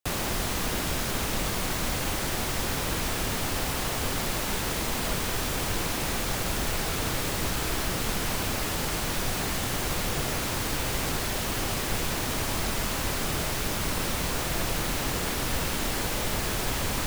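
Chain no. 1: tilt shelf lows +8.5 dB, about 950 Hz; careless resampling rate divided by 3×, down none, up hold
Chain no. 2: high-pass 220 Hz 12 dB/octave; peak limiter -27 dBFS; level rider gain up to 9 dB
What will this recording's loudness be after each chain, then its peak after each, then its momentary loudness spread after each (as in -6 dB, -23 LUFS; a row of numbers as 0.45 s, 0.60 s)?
-26.5 LUFS, -25.5 LUFS; -9.0 dBFS, -18.0 dBFS; 1 LU, 0 LU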